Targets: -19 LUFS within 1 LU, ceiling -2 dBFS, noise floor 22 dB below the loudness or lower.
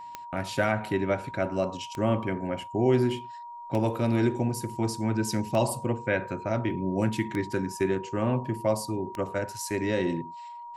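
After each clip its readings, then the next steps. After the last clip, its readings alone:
clicks found 6; steady tone 950 Hz; tone level -39 dBFS; loudness -28.5 LUFS; peak level -11.0 dBFS; loudness target -19.0 LUFS
-> de-click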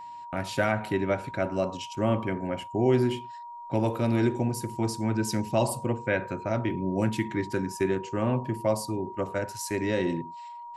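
clicks found 0; steady tone 950 Hz; tone level -39 dBFS
-> band-stop 950 Hz, Q 30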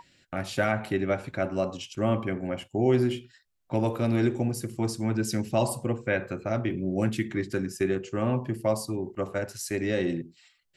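steady tone not found; loudness -29.0 LUFS; peak level -10.5 dBFS; loudness target -19.0 LUFS
-> trim +10 dB; peak limiter -2 dBFS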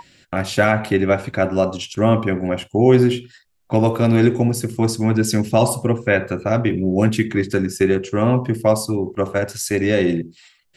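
loudness -19.0 LUFS; peak level -2.0 dBFS; noise floor -59 dBFS

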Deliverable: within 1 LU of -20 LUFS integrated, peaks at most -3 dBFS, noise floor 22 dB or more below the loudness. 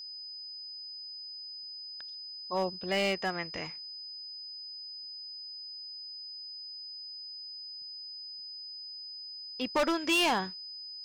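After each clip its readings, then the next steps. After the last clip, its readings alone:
clipped samples 0.8%; clipping level -23.0 dBFS; steady tone 5 kHz; tone level -41 dBFS; loudness -35.5 LUFS; peak level -23.0 dBFS; loudness target -20.0 LUFS
-> clip repair -23 dBFS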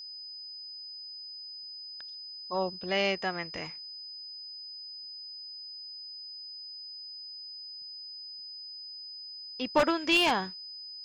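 clipped samples 0.0%; steady tone 5 kHz; tone level -41 dBFS
-> band-stop 5 kHz, Q 30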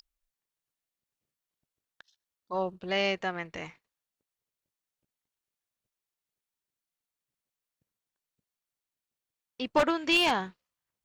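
steady tone not found; loudness -28.5 LUFS; peak level -13.5 dBFS; loudness target -20.0 LUFS
-> trim +8.5 dB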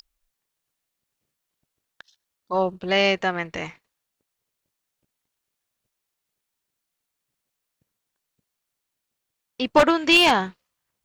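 loudness -20.0 LUFS; peak level -5.0 dBFS; noise floor -82 dBFS

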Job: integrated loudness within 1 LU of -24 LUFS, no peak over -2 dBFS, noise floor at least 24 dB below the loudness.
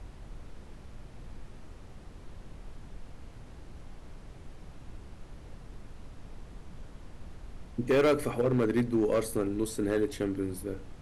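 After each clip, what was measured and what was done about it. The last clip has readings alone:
clipped samples 0.8%; clipping level -20.0 dBFS; noise floor -49 dBFS; noise floor target -54 dBFS; loudness -29.5 LUFS; peak level -20.0 dBFS; loudness target -24.0 LUFS
-> clip repair -20 dBFS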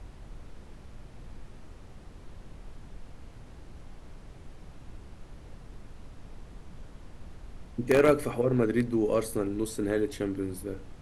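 clipped samples 0.0%; noise floor -49 dBFS; noise floor target -52 dBFS
-> noise print and reduce 6 dB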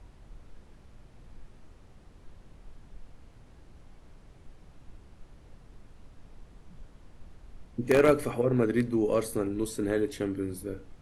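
noise floor -55 dBFS; loudness -28.0 LUFS; peak level -11.0 dBFS; loudness target -24.0 LUFS
-> trim +4 dB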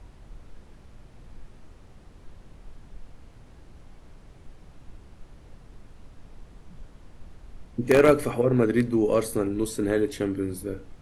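loudness -24.0 LUFS; peak level -7.0 dBFS; noise floor -51 dBFS

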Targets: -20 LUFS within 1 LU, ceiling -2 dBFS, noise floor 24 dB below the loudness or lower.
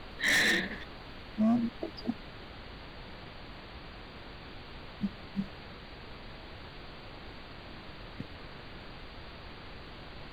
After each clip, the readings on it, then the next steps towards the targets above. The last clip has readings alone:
clipped samples 1.3%; clipping level -23.5 dBFS; noise floor -48 dBFS; noise floor target -56 dBFS; loudness -32.0 LUFS; peak level -23.5 dBFS; loudness target -20.0 LUFS
-> clip repair -23.5 dBFS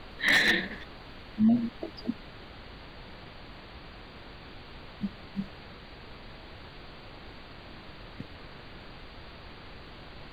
clipped samples 0.0%; noise floor -48 dBFS; noise floor target -53 dBFS
-> noise print and reduce 6 dB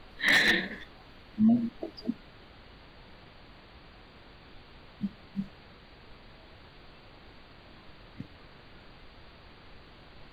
noise floor -54 dBFS; loudness -28.0 LUFS; peak level -14.5 dBFS; loudness target -20.0 LUFS
-> trim +8 dB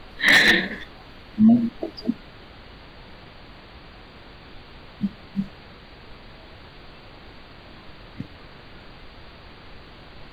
loudness -20.0 LUFS; peak level -6.5 dBFS; noise floor -46 dBFS

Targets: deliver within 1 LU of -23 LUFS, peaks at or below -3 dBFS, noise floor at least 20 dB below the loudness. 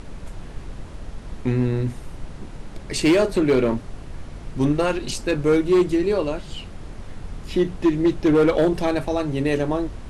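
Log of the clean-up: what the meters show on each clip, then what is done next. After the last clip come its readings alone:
clipped samples 1.6%; clipping level -12.0 dBFS; noise floor -38 dBFS; noise floor target -42 dBFS; loudness -21.5 LUFS; peak level -12.0 dBFS; loudness target -23.0 LUFS
-> clip repair -12 dBFS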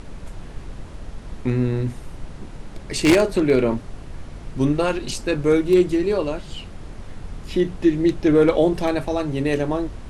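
clipped samples 0.0%; noise floor -38 dBFS; noise floor target -41 dBFS
-> noise print and reduce 6 dB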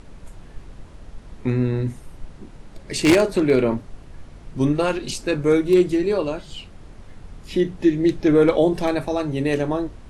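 noise floor -43 dBFS; loudness -20.5 LUFS; peak level -3.0 dBFS; loudness target -23.0 LUFS
-> trim -2.5 dB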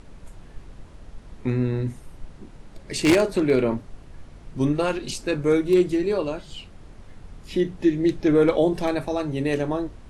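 loudness -23.0 LUFS; peak level -5.5 dBFS; noise floor -45 dBFS

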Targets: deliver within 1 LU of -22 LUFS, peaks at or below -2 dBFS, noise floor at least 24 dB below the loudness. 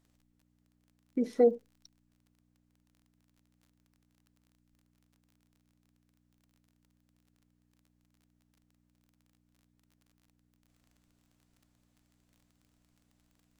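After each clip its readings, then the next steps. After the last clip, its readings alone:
tick rate 28 per s; hum 60 Hz; highest harmonic 300 Hz; hum level -71 dBFS; loudness -29.0 LUFS; peak level -14.0 dBFS; loudness target -22.0 LUFS
-> de-click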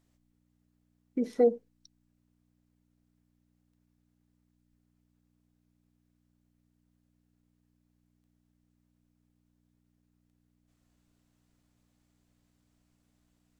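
tick rate 0 per s; hum 60 Hz; highest harmonic 300 Hz; hum level -71 dBFS
-> de-hum 60 Hz, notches 5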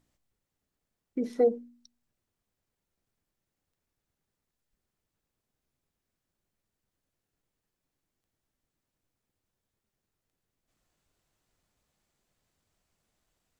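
hum not found; loudness -29.0 LUFS; peak level -14.5 dBFS; loudness target -22.0 LUFS
-> trim +7 dB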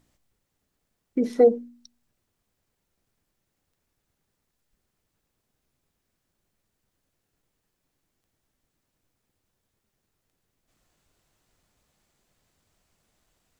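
loudness -22.0 LUFS; peak level -7.5 dBFS; noise floor -79 dBFS

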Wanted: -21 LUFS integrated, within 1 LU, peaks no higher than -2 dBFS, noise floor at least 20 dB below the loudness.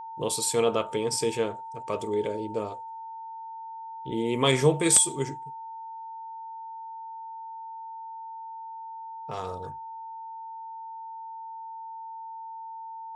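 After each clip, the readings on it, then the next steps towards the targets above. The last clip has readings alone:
steady tone 900 Hz; tone level -37 dBFS; loudness -26.5 LUFS; peak level -4.5 dBFS; loudness target -21.0 LUFS
-> band-stop 900 Hz, Q 30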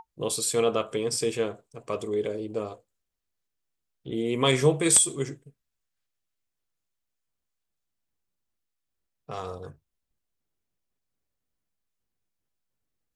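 steady tone not found; loudness -25.5 LUFS; peak level -4.0 dBFS; loudness target -21.0 LUFS
-> trim +4.5 dB; peak limiter -2 dBFS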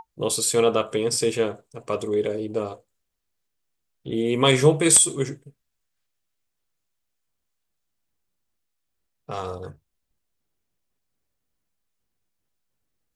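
loudness -21.5 LUFS; peak level -2.0 dBFS; noise floor -78 dBFS

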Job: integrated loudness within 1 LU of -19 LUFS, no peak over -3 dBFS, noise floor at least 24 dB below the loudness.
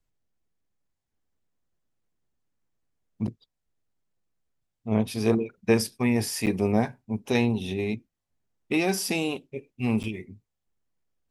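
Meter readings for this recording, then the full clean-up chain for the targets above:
dropouts 3; longest dropout 8.1 ms; loudness -27.0 LUFS; peak level -8.0 dBFS; loudness target -19.0 LUFS
-> interpolate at 3.27/6.46/10.03 s, 8.1 ms; trim +8 dB; peak limiter -3 dBFS

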